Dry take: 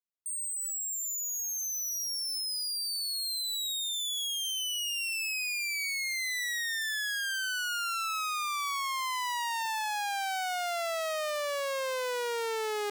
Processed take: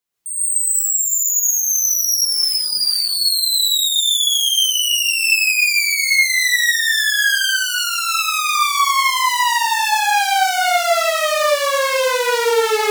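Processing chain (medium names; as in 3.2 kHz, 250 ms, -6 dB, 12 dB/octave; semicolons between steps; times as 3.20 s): 7.47–8.46 s: peaking EQ 1.5 kHz -7.5 dB 0.7 oct; in parallel at -3 dB: peak limiter -35.5 dBFS, peak gain reduction 8 dB; 0.62–1.08 s: on the sum: Butterworth band-stop 2.7 kHz, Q 0.84; 2.22–3.10 s: overload inside the chain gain 30.5 dB; gated-style reverb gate 200 ms rising, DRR -7.5 dB; trim +6 dB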